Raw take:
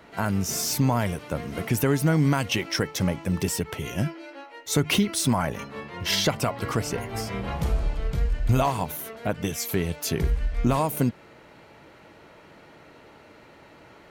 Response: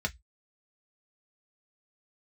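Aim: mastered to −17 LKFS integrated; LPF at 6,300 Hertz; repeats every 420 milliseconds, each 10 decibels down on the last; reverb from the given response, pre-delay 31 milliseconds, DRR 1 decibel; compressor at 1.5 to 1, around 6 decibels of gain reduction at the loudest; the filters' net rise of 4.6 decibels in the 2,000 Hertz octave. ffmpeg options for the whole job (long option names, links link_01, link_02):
-filter_complex "[0:a]lowpass=6300,equalizer=frequency=2000:width_type=o:gain=6,acompressor=threshold=-34dB:ratio=1.5,aecho=1:1:420|840|1260|1680:0.316|0.101|0.0324|0.0104,asplit=2[link_01][link_02];[1:a]atrim=start_sample=2205,adelay=31[link_03];[link_02][link_03]afir=irnorm=-1:irlink=0,volume=-6.5dB[link_04];[link_01][link_04]amix=inputs=2:normalize=0,volume=10dB"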